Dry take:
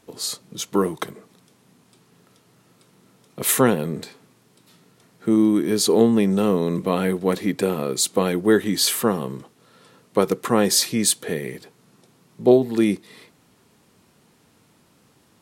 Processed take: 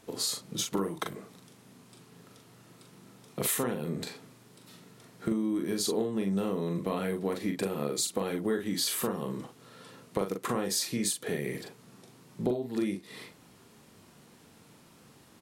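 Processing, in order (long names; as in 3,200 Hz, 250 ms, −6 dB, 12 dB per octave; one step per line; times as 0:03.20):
downward compressor 6 to 1, threshold −29 dBFS, peak gain reduction 18 dB
double-tracking delay 41 ms −5 dB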